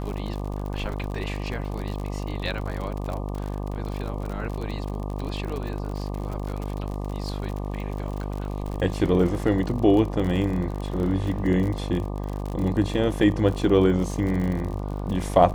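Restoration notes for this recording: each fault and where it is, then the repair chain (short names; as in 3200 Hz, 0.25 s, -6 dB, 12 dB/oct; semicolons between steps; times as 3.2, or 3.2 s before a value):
buzz 50 Hz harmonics 24 -30 dBFS
crackle 53/s -30 dBFS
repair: de-click; de-hum 50 Hz, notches 24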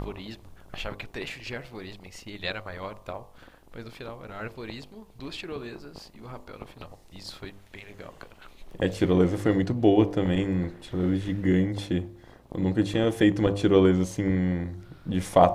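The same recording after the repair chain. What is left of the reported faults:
none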